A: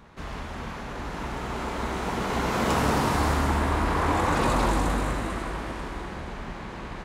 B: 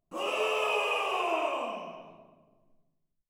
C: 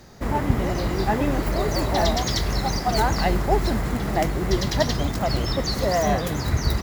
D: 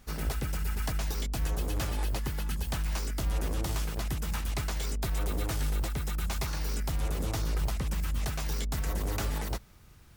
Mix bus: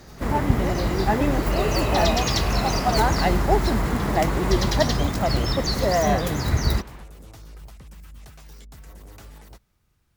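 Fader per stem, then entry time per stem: −7.5, −3.5, +1.0, −12.5 decibels; 0.00, 1.30, 0.00, 0.00 seconds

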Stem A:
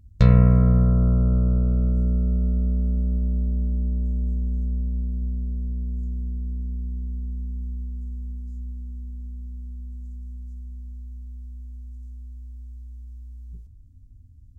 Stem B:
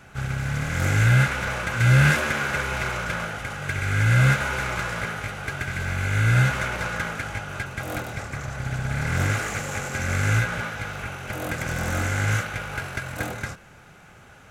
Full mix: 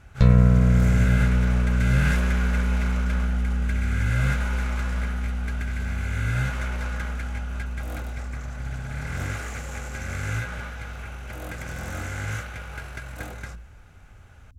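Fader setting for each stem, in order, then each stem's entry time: −1.0, −7.5 decibels; 0.00, 0.00 seconds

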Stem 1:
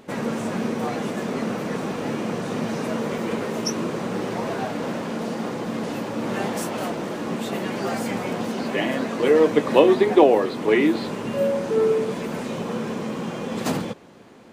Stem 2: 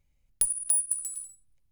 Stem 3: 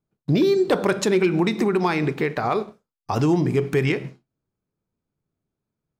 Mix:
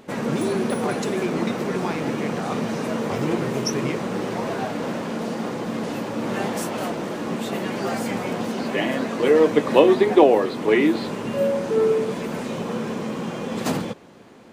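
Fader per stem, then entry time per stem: +0.5, −18.5, −8.0 decibels; 0.00, 0.00, 0.00 seconds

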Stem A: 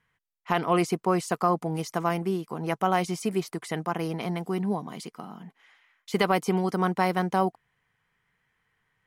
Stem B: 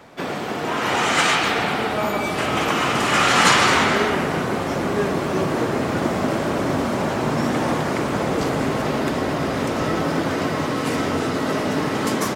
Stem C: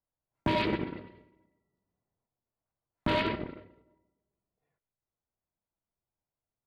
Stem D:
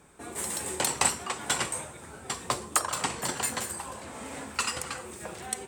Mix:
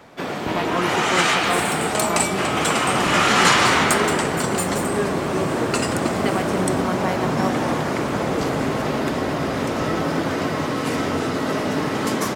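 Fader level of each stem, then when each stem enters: −2.0, −0.5, −0.5, +3.0 decibels; 0.05, 0.00, 0.00, 1.15 seconds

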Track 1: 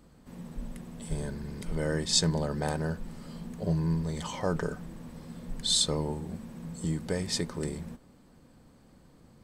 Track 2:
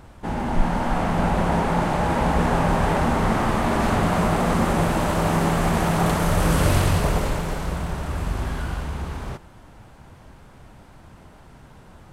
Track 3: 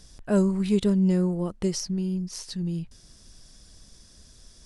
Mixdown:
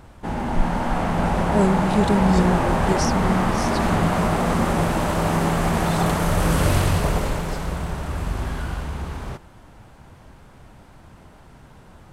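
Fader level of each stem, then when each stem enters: −14.5, 0.0, +2.5 decibels; 0.20, 0.00, 1.25 seconds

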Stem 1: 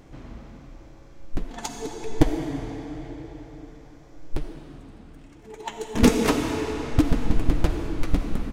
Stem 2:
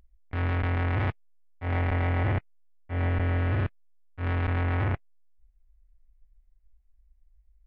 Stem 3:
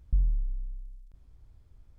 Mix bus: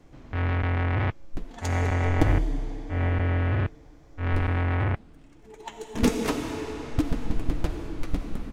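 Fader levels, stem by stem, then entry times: −5.5, +1.5, 0.0 decibels; 0.00, 0.00, 2.15 seconds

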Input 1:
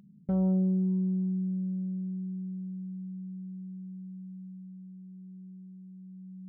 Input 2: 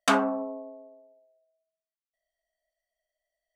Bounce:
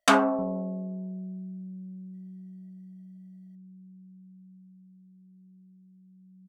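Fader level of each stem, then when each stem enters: −8.5, +2.5 decibels; 0.10, 0.00 seconds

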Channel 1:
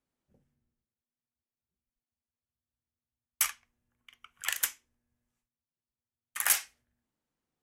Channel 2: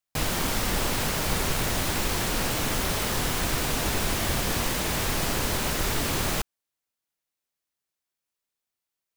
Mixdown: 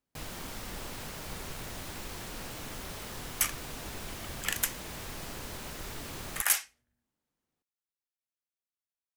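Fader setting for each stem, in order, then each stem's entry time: −0.5, −14.5 decibels; 0.00, 0.00 seconds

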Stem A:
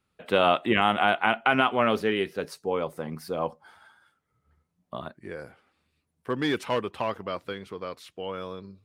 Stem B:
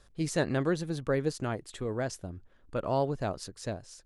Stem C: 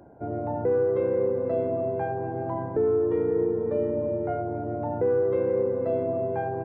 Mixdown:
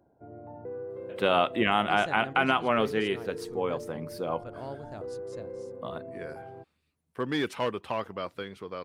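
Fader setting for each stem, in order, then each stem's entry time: −2.5, −11.5, −15.0 decibels; 0.90, 1.70, 0.00 seconds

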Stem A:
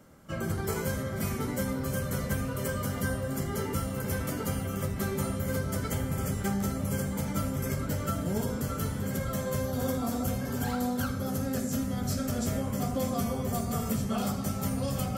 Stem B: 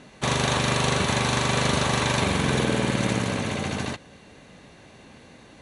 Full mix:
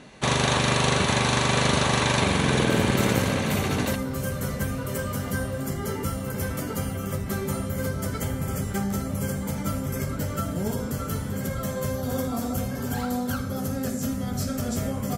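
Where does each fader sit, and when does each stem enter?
+2.5, +1.0 decibels; 2.30, 0.00 seconds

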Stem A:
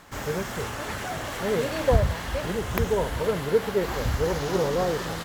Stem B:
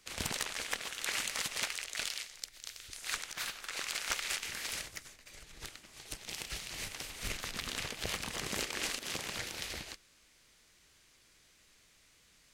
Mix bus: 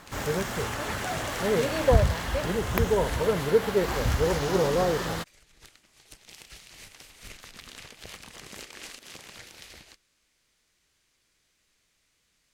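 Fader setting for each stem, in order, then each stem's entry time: +0.5, −6.5 decibels; 0.00, 0.00 seconds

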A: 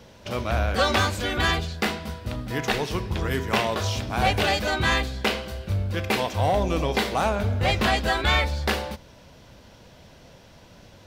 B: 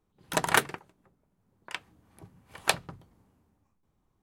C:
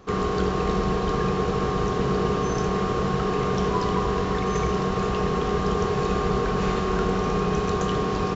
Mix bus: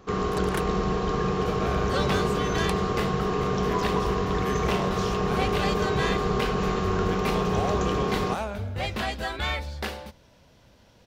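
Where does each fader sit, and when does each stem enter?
−7.5, −11.5, −2.0 decibels; 1.15, 0.00, 0.00 seconds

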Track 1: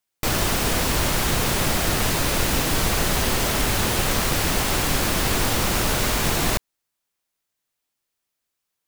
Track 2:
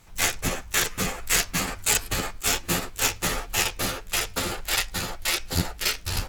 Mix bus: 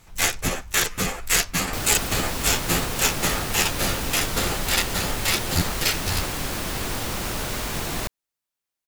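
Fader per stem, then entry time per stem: −6.5, +2.0 decibels; 1.50, 0.00 seconds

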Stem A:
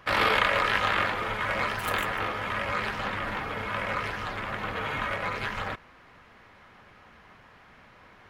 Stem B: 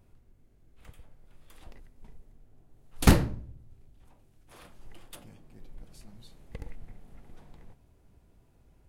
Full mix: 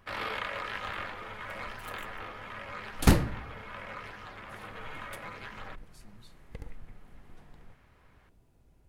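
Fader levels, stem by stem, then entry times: −12.0, −2.0 decibels; 0.00, 0.00 seconds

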